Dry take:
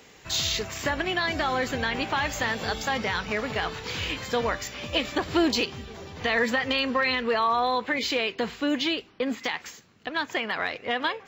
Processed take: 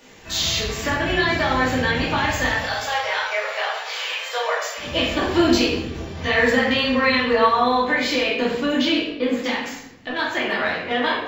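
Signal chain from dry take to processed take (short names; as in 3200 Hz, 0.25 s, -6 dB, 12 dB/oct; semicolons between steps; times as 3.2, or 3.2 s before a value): 2.46–4.78 steep high-pass 530 Hz 36 dB/oct; reverb RT60 0.80 s, pre-delay 3 ms, DRR -7 dB; gain -2 dB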